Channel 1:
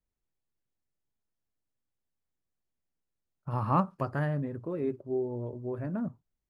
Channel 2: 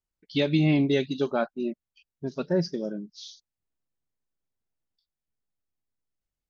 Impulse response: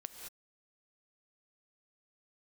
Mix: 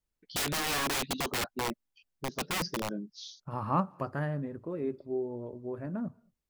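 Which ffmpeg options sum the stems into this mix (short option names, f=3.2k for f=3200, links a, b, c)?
-filter_complex "[0:a]volume=-2.5dB,asplit=2[a][b];[b]volume=-19.5dB[c];[1:a]aeval=exprs='(mod(15.8*val(0)+1,2)-1)/15.8':c=same,volume=-2dB[d];[2:a]atrim=start_sample=2205[e];[c][e]afir=irnorm=-1:irlink=0[f];[a][d][f]amix=inputs=3:normalize=0,equalizer=f=120:w=5.6:g=-7"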